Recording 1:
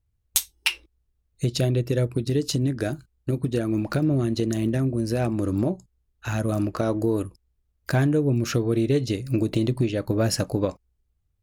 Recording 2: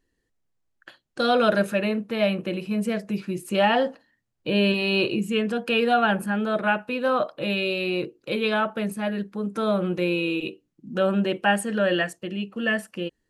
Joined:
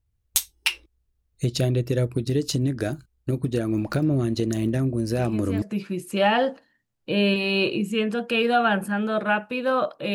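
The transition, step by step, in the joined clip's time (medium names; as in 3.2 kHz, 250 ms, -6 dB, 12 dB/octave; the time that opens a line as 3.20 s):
recording 1
5.18 s: add recording 2 from 2.56 s 0.44 s -7.5 dB
5.62 s: go over to recording 2 from 3.00 s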